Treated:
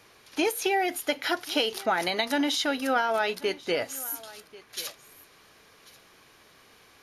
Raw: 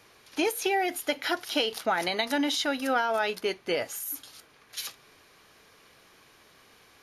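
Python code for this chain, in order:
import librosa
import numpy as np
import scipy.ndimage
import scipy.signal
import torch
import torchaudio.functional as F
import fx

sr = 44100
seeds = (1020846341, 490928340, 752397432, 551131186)

y = x + 10.0 ** (-20.5 / 20.0) * np.pad(x, (int(1089 * sr / 1000.0), 0))[:len(x)]
y = y * 10.0 ** (1.0 / 20.0)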